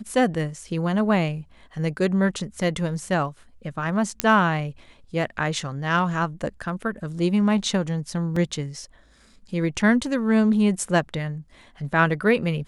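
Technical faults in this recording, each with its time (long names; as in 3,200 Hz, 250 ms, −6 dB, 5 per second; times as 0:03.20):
0:04.20: click −2 dBFS
0:08.36: drop-out 4.1 ms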